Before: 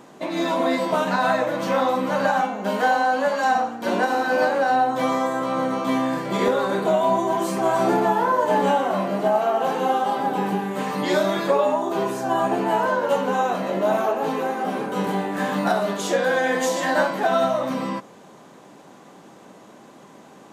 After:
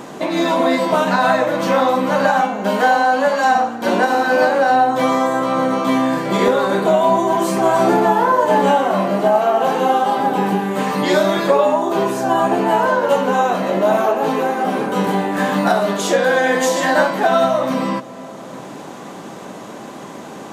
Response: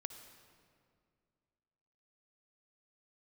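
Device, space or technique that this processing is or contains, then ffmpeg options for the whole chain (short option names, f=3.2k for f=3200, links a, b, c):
ducked reverb: -filter_complex "[0:a]asplit=3[a][b][c];[1:a]atrim=start_sample=2205[d];[b][d]afir=irnorm=-1:irlink=0[e];[c]apad=whole_len=905035[f];[e][f]sidechaincompress=threshold=-36dB:ratio=8:attack=8.1:release=627,volume=9dB[g];[a][g]amix=inputs=2:normalize=0,volume=4dB"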